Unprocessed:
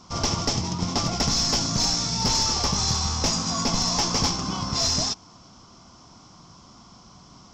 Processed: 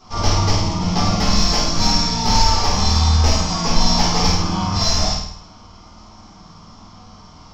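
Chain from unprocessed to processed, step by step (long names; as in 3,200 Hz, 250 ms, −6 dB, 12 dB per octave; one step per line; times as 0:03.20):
graphic EQ with 10 bands 125 Hz −5 dB, 250 Hz −6 dB, 8,000 Hz −8 dB
on a send: flutter between parallel walls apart 8.8 metres, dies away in 0.64 s
on the sum: rectangular room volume 270 cubic metres, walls furnished, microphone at 3.9 metres
level −1 dB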